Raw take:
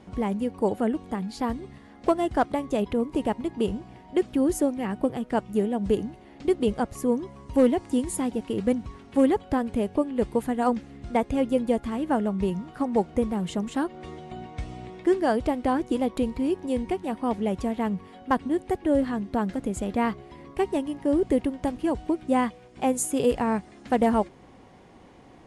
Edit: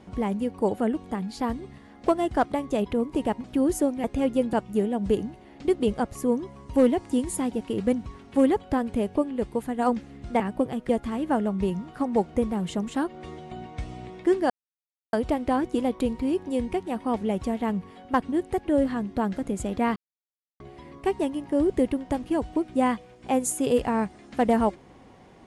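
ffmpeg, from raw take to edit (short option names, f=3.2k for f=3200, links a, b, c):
-filter_complex "[0:a]asplit=10[a][b][c][d][e][f][g][h][i][j];[a]atrim=end=3.442[k];[b]atrim=start=4.238:end=4.842[l];[c]atrim=start=11.198:end=11.692[m];[d]atrim=start=5.328:end=10.162[n];[e]atrim=start=10.158:end=10.592,asetpts=PTS-STARTPTS,volume=-3dB[o];[f]atrim=start=10.588:end=11.202[p];[g]atrim=start=4.838:end=5.332[q];[h]atrim=start=11.688:end=15.3,asetpts=PTS-STARTPTS,afade=t=out:st=3.608:d=0.004:c=hsin,apad=pad_dur=0.63[r];[i]atrim=start=15.3:end=20.13,asetpts=PTS-STARTPTS,afade=t=in:d=0.004:c=hsin,afade=t=out:st=4.826:d=0.004:c=hsin,apad=pad_dur=0.64[s];[j]atrim=start=20.13,asetpts=PTS-STARTPTS,afade=t=in:d=0.004:c=hsin[t];[k][l]acrossfade=d=0.004:c1=hsin:c2=hsin[u];[u][m]acrossfade=d=0.004:c1=hsin:c2=hsin[v];[v][n]acrossfade=d=0.004:c1=hsin:c2=hsin[w];[w][o]acrossfade=d=0.004:c1=hsin:c2=hsin[x];[x][p]acrossfade=d=0.004:c1=hsin:c2=hsin[y];[y][q]acrossfade=d=0.004:c1=hsin:c2=hsin[z];[r][s][t]concat=n=3:v=0:a=1[aa];[z][aa]acrossfade=d=0.004:c1=hsin:c2=hsin"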